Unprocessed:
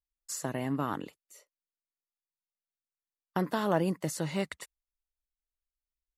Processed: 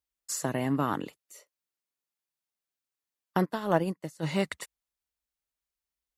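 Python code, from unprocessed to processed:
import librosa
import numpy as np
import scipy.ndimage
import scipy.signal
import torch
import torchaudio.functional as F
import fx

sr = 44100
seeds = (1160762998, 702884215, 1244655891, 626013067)

y = scipy.signal.sosfilt(scipy.signal.butter(2, 68.0, 'highpass', fs=sr, output='sos'), x)
y = fx.upward_expand(y, sr, threshold_db=-42.0, expansion=2.5, at=(3.44, 4.22), fade=0.02)
y = y * librosa.db_to_amplitude(4.0)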